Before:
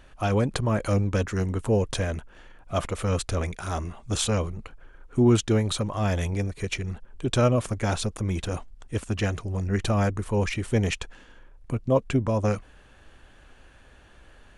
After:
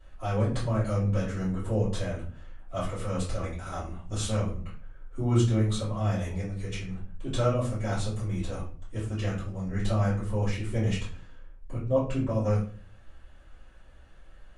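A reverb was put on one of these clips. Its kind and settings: shoebox room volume 36 m³, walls mixed, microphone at 2.4 m; gain -18.5 dB

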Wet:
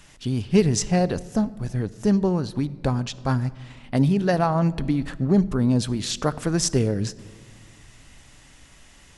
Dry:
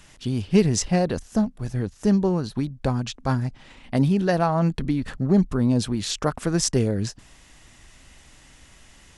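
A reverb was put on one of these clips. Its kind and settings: shoebox room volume 2500 m³, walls mixed, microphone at 0.3 m

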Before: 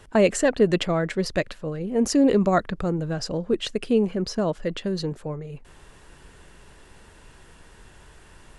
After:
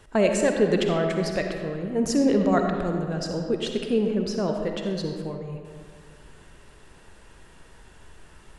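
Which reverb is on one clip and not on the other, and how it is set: digital reverb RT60 2 s, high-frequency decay 0.55×, pre-delay 20 ms, DRR 3 dB; gain -3 dB

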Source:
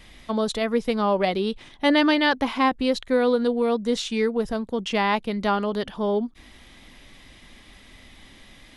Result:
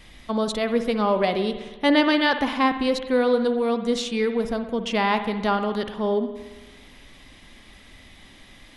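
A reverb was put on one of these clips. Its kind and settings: spring tank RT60 1.2 s, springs 56 ms, chirp 40 ms, DRR 8.5 dB

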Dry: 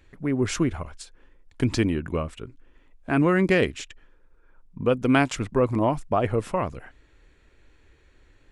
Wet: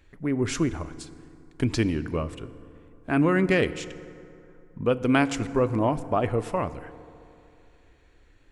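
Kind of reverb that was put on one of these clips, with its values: FDN reverb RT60 2.8 s, high-frequency decay 0.5×, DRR 14 dB; gain -1.5 dB

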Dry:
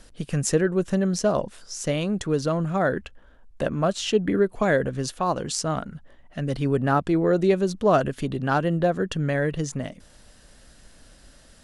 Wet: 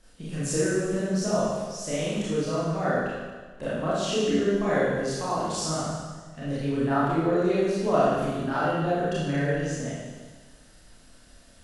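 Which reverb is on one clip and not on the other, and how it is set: Schroeder reverb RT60 1.4 s, combs from 25 ms, DRR -10 dB; gain -12 dB

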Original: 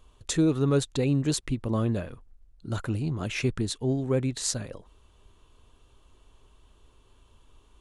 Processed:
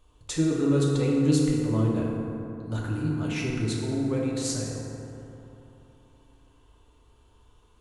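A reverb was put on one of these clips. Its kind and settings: FDN reverb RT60 3.2 s, high-frequency decay 0.4×, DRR -3.5 dB; gain -5 dB

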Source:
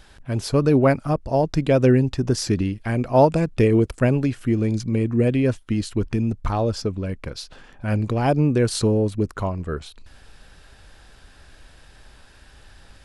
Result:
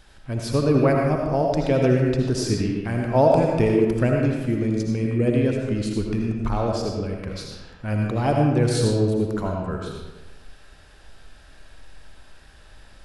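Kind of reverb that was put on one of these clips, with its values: digital reverb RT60 1.2 s, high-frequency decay 0.65×, pre-delay 40 ms, DRR 0 dB; gain -3.5 dB

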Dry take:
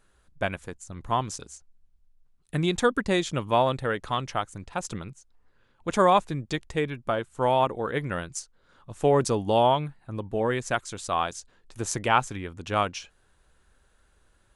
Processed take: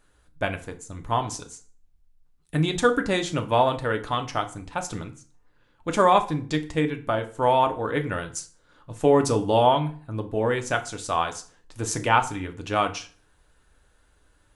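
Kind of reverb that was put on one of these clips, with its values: FDN reverb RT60 0.42 s, low-frequency decay 1.1×, high-frequency decay 0.8×, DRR 5.5 dB; gain +1 dB

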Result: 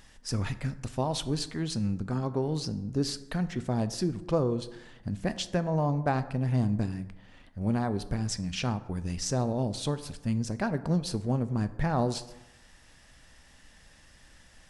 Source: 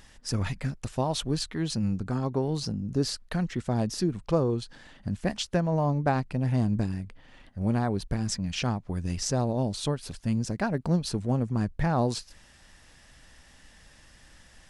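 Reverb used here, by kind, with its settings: plate-style reverb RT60 1 s, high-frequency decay 0.5×, DRR 12 dB; gain -2 dB

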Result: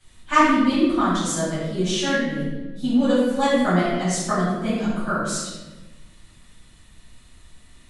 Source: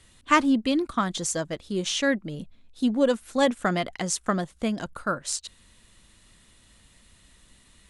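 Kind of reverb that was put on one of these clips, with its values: shoebox room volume 680 m³, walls mixed, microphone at 8 m; gain -10.5 dB

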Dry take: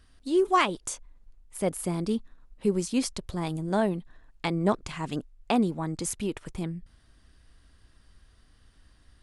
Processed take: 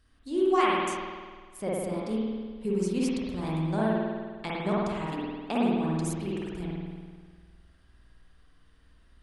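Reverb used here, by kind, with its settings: spring tank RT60 1.6 s, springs 50 ms, chirp 65 ms, DRR -6 dB; gain -7.5 dB

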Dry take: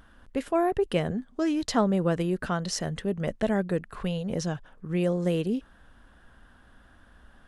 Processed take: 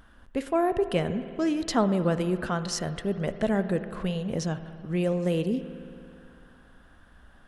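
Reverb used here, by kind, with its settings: spring tank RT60 2.5 s, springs 55 ms, chirp 70 ms, DRR 11 dB

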